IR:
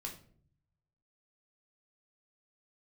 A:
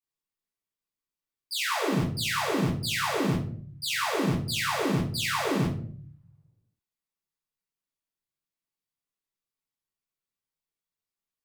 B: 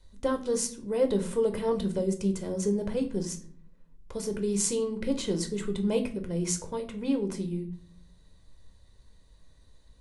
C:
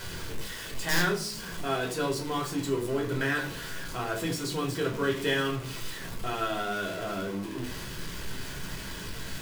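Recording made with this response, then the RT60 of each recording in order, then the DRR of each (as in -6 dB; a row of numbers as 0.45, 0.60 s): C; 0.55, 0.55, 0.55 s; -9.5, 5.0, 0.0 dB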